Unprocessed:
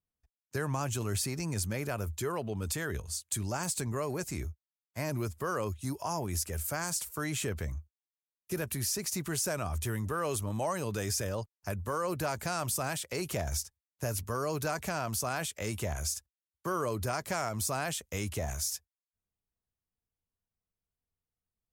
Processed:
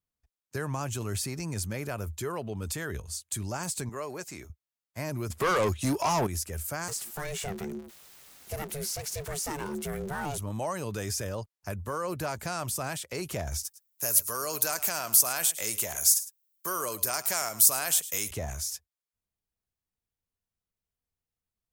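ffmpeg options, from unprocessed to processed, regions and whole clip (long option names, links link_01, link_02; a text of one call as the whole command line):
ffmpeg -i in.wav -filter_complex "[0:a]asettb=1/sr,asplit=3[link_01][link_02][link_03];[link_01]atrim=end=3.894[link_04];[link_02]atrim=start=3.89:end=4.5,asetpts=PTS-STARTPTS,afade=type=in:duration=0.004:curve=qsin,afade=type=out:start_time=0.606:duration=0.004:curve=qsin,highpass=frequency=420:poles=1,equalizer=frequency=11000:width=1.5:gain=-6[link_05];[link_03]atrim=start=4.496[link_06];[link_04][link_05]acrossfade=duration=0.004:curve1=hsin:curve2=qsin[link_07];[link_07][link_06]acrossfade=duration=0.004:curve1=qsin:curve2=hsin,asettb=1/sr,asplit=3[link_08][link_09][link_10];[link_08]atrim=end=5.304[link_11];[link_09]atrim=start=5.3:end=6.27,asetpts=PTS-STARTPTS,afade=type=in:duration=0.004:curve=qsin,afade=type=out:start_time=0.966:duration=0.004:curve=qsin,lowshelf=frequency=430:gain=7.5,asplit=2[link_12][link_13];[link_13]highpass=frequency=720:poles=1,volume=22dB,asoftclip=type=tanh:threshold=-18dB[link_14];[link_12][link_14]amix=inputs=2:normalize=0,lowpass=frequency=5900:poles=1,volume=-6dB[link_15];[link_10]atrim=start=6.266[link_16];[link_11][link_15]acrossfade=duration=0.004:curve1=hsin:curve2=qsin[link_17];[link_17][link_16]acrossfade=duration=0.004:curve1=qsin:curve2=hsin,asettb=1/sr,asplit=3[link_18][link_19][link_20];[link_18]atrim=end=6.884[link_21];[link_19]atrim=start=6.88:end=10.38,asetpts=PTS-STARTPTS,afade=type=in:duration=0.004:curve=qsin,afade=type=out:start_time=3.496:duration=0.004:curve=qsin,aeval=exprs='val(0)+0.5*0.0119*sgn(val(0))':channel_layout=same,aeval=exprs='val(0)*sin(2*PI*290*n/s)':channel_layout=same[link_22];[link_20]atrim=start=10.376[link_23];[link_21][link_22]acrossfade=duration=0.004:curve1=hsin:curve2=qsin[link_24];[link_24][link_23]acrossfade=duration=0.004:curve1=qsin:curve2=hsin,asettb=1/sr,asplit=3[link_25][link_26][link_27];[link_25]atrim=end=13.634[link_28];[link_26]atrim=start=13.63:end=18.31,asetpts=PTS-STARTPTS,afade=type=in:duration=0.004:curve=qsin,afade=type=out:start_time=4.676:duration=0.004:curve=qsin,aemphasis=mode=production:type=riaa,aecho=1:1:107:0.158,atrim=end_sample=206388[link_29];[link_27]atrim=start=18.306[link_30];[link_28][link_29]acrossfade=duration=0.004:curve1=hsin:curve2=qsin[link_31];[link_31][link_30]acrossfade=duration=0.004:curve1=qsin:curve2=hsin" out.wav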